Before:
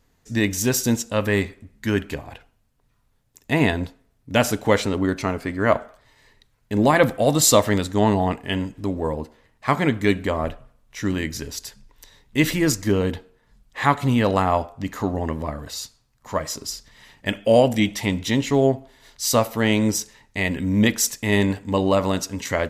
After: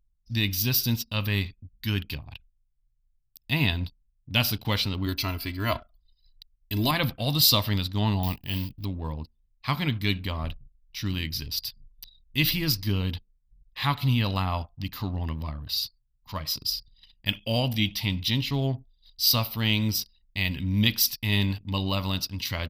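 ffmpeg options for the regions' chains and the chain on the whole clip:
-filter_complex "[0:a]asettb=1/sr,asplit=3[a][b][c];[a]atrim=end=5.064[d];[b]atrim=start=5.06:end=6.91,asetpts=PTS-STARTPTS,afade=t=in:d=0.004:c=qsin,afade=t=out:st=1.846:d=0.004:c=qsin,highshelf=f=7.1k:g=11,aecho=1:1:3:0.59,atrim=end_sample=81585[e];[c]atrim=start=6.906[f];[d][e]acrossfade=d=0.004:c1=hsin:c2=qsin[g];[g][f]acrossfade=d=0.004:c1=qsin:c2=hsin,asettb=1/sr,asplit=3[h][i][j];[h]atrim=end=8.234[k];[i]atrim=start=8.23:end=8.85,asetpts=PTS-STARTPTS,afade=t=in:d=0.004:c=qsin,afade=t=out:st=0.616:d=0.004:c=qsin,deesser=0.9,equalizer=f=1.4k:w=7.6:g=-13.5,acrusher=bits=5:mode=log:mix=0:aa=0.000001[l];[j]atrim=start=8.846[m];[k][l]acrossfade=d=0.004:c1=hsin:c2=qsin[n];[n][m]acrossfade=d=0.004:c1=qsin:c2=hsin,firequalizer=gain_entry='entry(120,0);entry(200,-7);entry(450,-18);entry(1000,-8);entry(1800,-11);entry(2600,2);entry(4800,8);entry(6900,-16);entry(15000,14)':delay=0.05:min_phase=1,anlmdn=0.0631,adynamicequalizer=threshold=0.0158:dfrequency=2300:dqfactor=0.7:tfrequency=2300:tqfactor=0.7:attack=5:release=100:ratio=0.375:range=2:mode=cutabove:tftype=highshelf"

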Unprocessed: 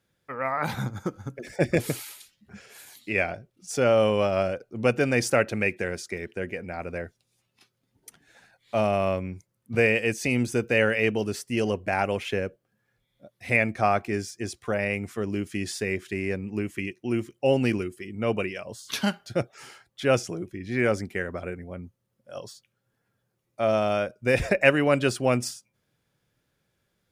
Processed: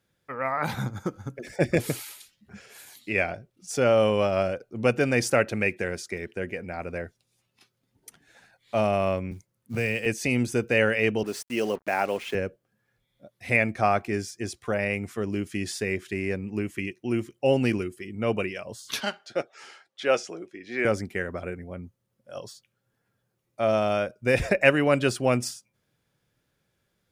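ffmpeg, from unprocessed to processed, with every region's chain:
-filter_complex "[0:a]asettb=1/sr,asplit=3[a][b][c];[a]atrim=end=9.314[d];[b]atrim=start=9.31:end=10.06,asetpts=PTS-STARTPTS,afade=t=in:d=0.004:c=qsin,afade=t=out:st=0.746:d=0.004:c=qsin,acrossover=split=200|3000[e][f][g];[f]acompressor=threshold=-29dB:ratio=3:attack=3.2:release=140:knee=2.83:detection=peak[h];[e][h][g]amix=inputs=3:normalize=0,acrusher=bits=7:mode=log:mix=0:aa=0.000001[i];[c]atrim=start=10.056[j];[d][i]acrossfade=d=0.004:c1=hsin:c2=qsin[k];[k][j]acrossfade=d=0.004:c1=qsin:c2=hsin,asettb=1/sr,asplit=3[l][m][n];[l]atrim=end=11.234[o];[m]atrim=start=11.23:end=12.35,asetpts=PTS-STARTPTS,afade=t=in:d=0.004:c=qsin,afade=t=out:st=1.116:d=0.004:c=qsin,highpass=240,acrusher=bits=6:mix=0:aa=0.5,adynamicequalizer=threshold=0.0126:dfrequency=1700:dqfactor=0.7:tfrequency=1700:tqfactor=0.7:attack=5:release=100:ratio=0.375:range=2.5:mode=cutabove:tftype=highshelf[p];[n]atrim=start=12.346[q];[o][p]acrossfade=d=0.004:c1=hsin:c2=qsin[r];[r][q]acrossfade=d=0.004:c1=qsin:c2=hsin,asettb=1/sr,asplit=3[s][t][u];[s]atrim=end=19.004[v];[t]atrim=start=19:end=20.85,asetpts=PTS-STARTPTS,afade=t=in:d=0.004:c=qsin,afade=t=out:st=1.846:d=0.004:c=qsin,highpass=380,lowpass=6.5k,bandreject=f=1k:w=22,asplit=2[w][x];[x]adelay=13,volume=-14dB[y];[w][y]amix=inputs=2:normalize=0,atrim=end_sample=81585[z];[u]atrim=start=20.846[aa];[v][z]acrossfade=d=0.004:c1=hsin:c2=qsin[ab];[ab][aa]acrossfade=d=0.004:c1=qsin:c2=hsin"

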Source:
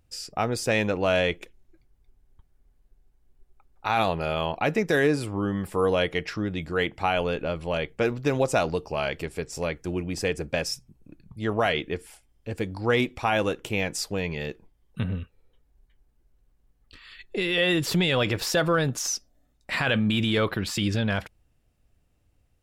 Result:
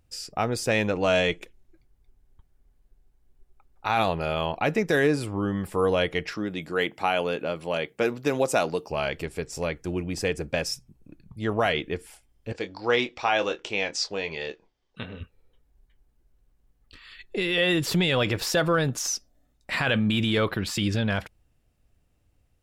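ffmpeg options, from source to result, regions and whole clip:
-filter_complex "[0:a]asettb=1/sr,asplit=3[a][b][c];[a]atrim=end=0.954[d];[b]atrim=start=0.95:end=1.4,asetpts=PTS-STARTPTS,afade=t=in:d=0.004:c=qsin,afade=t=out:st=0.446:d=0.004:c=qsin,lowpass=f=7.7k:t=q:w=2.3,aecho=1:1:6.5:0.3,atrim=end_sample=19845[e];[c]atrim=start=1.396[f];[d][e]acrossfade=d=0.004:c1=hsin:c2=qsin[g];[g][f]acrossfade=d=0.004:c1=qsin:c2=hsin,asettb=1/sr,asplit=3[h][i][j];[h]atrim=end=6.324[k];[i]atrim=start=6.32:end=8.9,asetpts=PTS-STARTPTS,afade=t=in:d=0.004:c=qsin,afade=t=out:st=2.576:d=0.004:c=qsin,highpass=180,highshelf=f=11k:g=9.5[l];[j]atrim=start=8.896[m];[k][l]acrossfade=d=0.004:c1=hsin:c2=qsin[n];[n][m]acrossfade=d=0.004:c1=qsin:c2=hsin,asettb=1/sr,asplit=3[o][p][q];[o]atrim=end=12.524[r];[p]atrim=start=12.52:end=15.21,asetpts=PTS-STARTPTS,afade=t=in:d=0.004:c=qsin,afade=t=out:st=2.686:d=0.004:c=qsin,lowpass=f=5.5k:w=0.5412,lowpass=f=5.5k:w=1.3066,bass=f=250:g=-14,treble=f=4k:g=8,asplit=2[s][t];[t]adelay=25,volume=-10dB[u];[s][u]amix=inputs=2:normalize=0,atrim=end_sample=118629[v];[q]atrim=start=15.206[w];[r][v]acrossfade=d=0.004:c1=hsin:c2=qsin[x];[x][w]acrossfade=d=0.004:c1=qsin:c2=hsin"

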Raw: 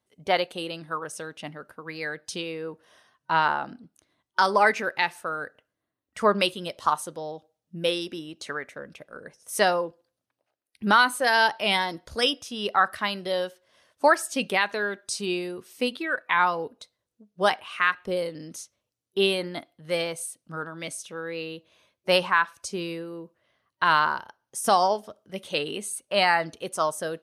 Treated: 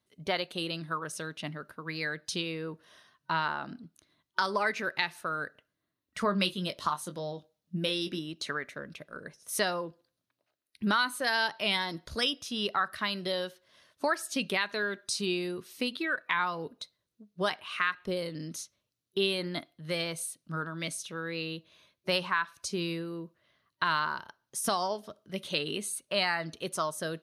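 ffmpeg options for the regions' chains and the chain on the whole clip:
-filter_complex "[0:a]asettb=1/sr,asplit=3[a][b][c];[a]atrim=end=6.234[d];[b]atrim=start=6.23:end=8.19,asetpts=PTS-STARTPTS,afade=t=in:d=0.004:c=qsin,afade=t=out:st=1.956:d=0.004:c=qsin,equalizer=f=190:w=4.1:g=5.5,asplit=2[e][f];[f]adelay=21,volume=-9dB[g];[e][g]amix=inputs=2:normalize=0,atrim=end_sample=86436[h];[c]atrim=start=8.186[i];[d][h]acrossfade=d=0.004:c1=hsin:c2=qsin[j];[j][i]acrossfade=d=0.004:c1=qsin:c2=hsin,acompressor=threshold=-29dB:ratio=2,equalizer=f=160:t=o:w=0.33:g=4,equalizer=f=500:t=o:w=0.33:g=-5,equalizer=f=800:t=o:w=0.33:g=-7,equalizer=f=4k:t=o:w=0.33:g=5,equalizer=f=8k:t=o:w=0.33:g=-4"

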